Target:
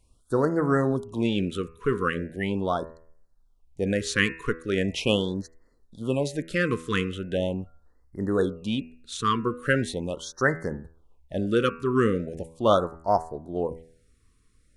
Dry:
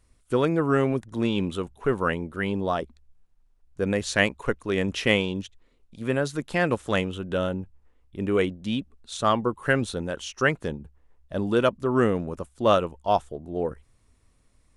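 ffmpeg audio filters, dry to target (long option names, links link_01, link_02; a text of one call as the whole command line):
ffmpeg -i in.wav -af "bandreject=frequency=81.61:width_type=h:width=4,bandreject=frequency=163.22:width_type=h:width=4,bandreject=frequency=244.83:width_type=h:width=4,bandreject=frequency=326.44:width_type=h:width=4,bandreject=frequency=408.05:width_type=h:width=4,bandreject=frequency=489.66:width_type=h:width=4,bandreject=frequency=571.27:width_type=h:width=4,bandreject=frequency=652.88:width_type=h:width=4,bandreject=frequency=734.49:width_type=h:width=4,bandreject=frequency=816.1:width_type=h:width=4,bandreject=frequency=897.71:width_type=h:width=4,bandreject=frequency=979.32:width_type=h:width=4,bandreject=frequency=1060.93:width_type=h:width=4,bandreject=frequency=1142.54:width_type=h:width=4,bandreject=frequency=1224.15:width_type=h:width=4,bandreject=frequency=1305.76:width_type=h:width=4,bandreject=frequency=1387.37:width_type=h:width=4,bandreject=frequency=1468.98:width_type=h:width=4,bandreject=frequency=1550.59:width_type=h:width=4,bandreject=frequency=1632.2:width_type=h:width=4,bandreject=frequency=1713.81:width_type=h:width=4,bandreject=frequency=1795.42:width_type=h:width=4,bandreject=frequency=1877.03:width_type=h:width=4,bandreject=frequency=1958.64:width_type=h:width=4,bandreject=frequency=2040.25:width_type=h:width=4,bandreject=frequency=2121.86:width_type=h:width=4,bandreject=frequency=2203.47:width_type=h:width=4,bandreject=frequency=2285.08:width_type=h:width=4,bandreject=frequency=2366.69:width_type=h:width=4,bandreject=frequency=2448.3:width_type=h:width=4,bandreject=frequency=2529.91:width_type=h:width=4,bandreject=frequency=2611.52:width_type=h:width=4,bandreject=frequency=2693.13:width_type=h:width=4,bandreject=frequency=2774.74:width_type=h:width=4,afftfilt=real='re*(1-between(b*sr/1024,680*pow(3000/680,0.5+0.5*sin(2*PI*0.4*pts/sr))/1.41,680*pow(3000/680,0.5+0.5*sin(2*PI*0.4*pts/sr))*1.41))':imag='im*(1-between(b*sr/1024,680*pow(3000/680,0.5+0.5*sin(2*PI*0.4*pts/sr))/1.41,680*pow(3000/680,0.5+0.5*sin(2*PI*0.4*pts/sr))*1.41))':win_size=1024:overlap=0.75" out.wav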